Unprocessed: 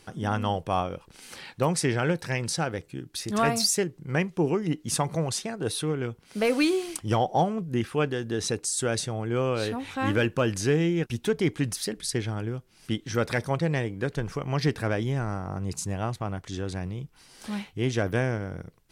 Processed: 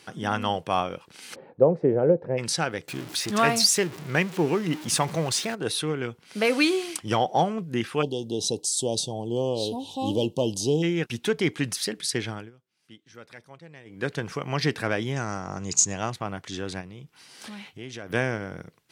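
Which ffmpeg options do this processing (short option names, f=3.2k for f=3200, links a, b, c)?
-filter_complex "[0:a]asplit=3[a][b][c];[a]afade=t=out:st=1.34:d=0.02[d];[b]lowpass=f=520:t=q:w=3.1,afade=t=in:st=1.34:d=0.02,afade=t=out:st=2.37:d=0.02[e];[c]afade=t=in:st=2.37:d=0.02[f];[d][e][f]amix=inputs=3:normalize=0,asettb=1/sr,asplit=3[g][h][i];[g]atrim=end=2.884[j];[h]atrim=start=2.88:end=5.55,asetpts=PTS-STARTPTS,afade=t=in:d=0.004:c=qsin,afade=t=out:st=2.666:d=0.004:c=qsin,aeval=exprs='val(0)+0.5*0.0168*sgn(val(0))':c=same[k];[i]atrim=start=5.546[l];[j][k]acrossfade=d=0.004:c1=hsin:c2=qsin[m];[m][l]acrossfade=d=0.004:c1=qsin:c2=hsin,asplit=3[n][o][p];[n]afade=t=out:st=8.01:d=0.02[q];[o]asuperstop=centerf=1700:order=12:qfactor=0.81,afade=t=in:st=8.01:d=0.02,afade=t=out:st=10.82:d=0.02[r];[p]afade=t=in:st=10.82:d=0.02[s];[q][r][s]amix=inputs=3:normalize=0,asettb=1/sr,asplit=3[t][u][v];[t]atrim=end=15.164[w];[u]atrim=start=15.16:end=16.1,asetpts=PTS-STARTPTS,afade=t=in:d=0.004:c=qsin,afade=t=out:st=0.936:d=0.004:c=qsin,lowpass=f=6.8k:t=q:w=7.2[x];[v]atrim=start=16.096[y];[w][x]acrossfade=d=0.004:c1=hsin:c2=qsin[z];[z][y]acrossfade=d=0.004:c1=qsin:c2=hsin,asplit=3[aa][ab][ac];[aa]afade=t=out:st=16.8:d=0.02[ad];[ab]acompressor=threshold=-39dB:ratio=3:attack=3.2:release=140:knee=1:detection=peak,afade=t=in:st=16.8:d=0.02,afade=t=out:st=18.09:d=0.02[ae];[ac]afade=t=in:st=18.09:d=0.02[af];[ad][ae][af]amix=inputs=3:normalize=0,asplit=3[ag][ah][ai];[ag]atrim=end=12.51,asetpts=PTS-STARTPTS,afade=t=out:st=12.3:d=0.21:silence=0.0891251[aj];[ah]atrim=start=12.51:end=13.85,asetpts=PTS-STARTPTS,volume=-21dB[ak];[ai]atrim=start=13.85,asetpts=PTS-STARTPTS,afade=t=in:d=0.21:silence=0.0891251[al];[aj][ak][al]concat=n=3:v=0:a=1,highpass=130,equalizer=f=2.8k:w=0.47:g=5.5"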